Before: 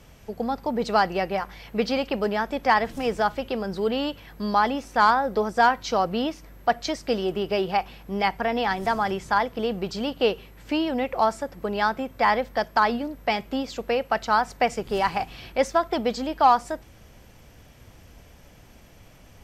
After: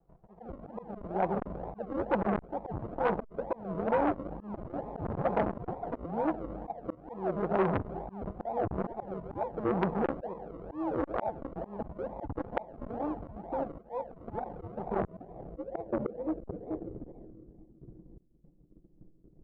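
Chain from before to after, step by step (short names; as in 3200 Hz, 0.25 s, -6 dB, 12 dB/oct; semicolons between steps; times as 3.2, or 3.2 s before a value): band shelf 3700 Hz -10 dB 2.5 oct; thin delay 0.258 s, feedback 54%, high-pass 2100 Hz, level -14.5 dB; gate -47 dBFS, range -25 dB; in parallel at -2 dB: compressor, threshold -32 dBFS, peak gain reduction 18 dB; on the sum: comb 5.8 ms, depth 92%; reverb RT60 2.0 s, pre-delay 6 ms, DRR 12 dB; decimation with a swept rate 42×, swing 60% 2.2 Hz; auto swell 0.549 s; low-pass sweep 810 Hz -> 330 Hz, 14.72–17.75; core saturation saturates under 1100 Hz; gain -3 dB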